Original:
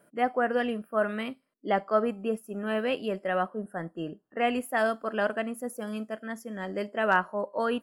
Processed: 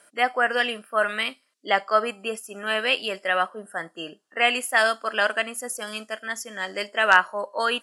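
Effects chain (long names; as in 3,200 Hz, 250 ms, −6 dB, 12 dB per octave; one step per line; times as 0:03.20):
meter weighting curve ITU-R 468
level +6 dB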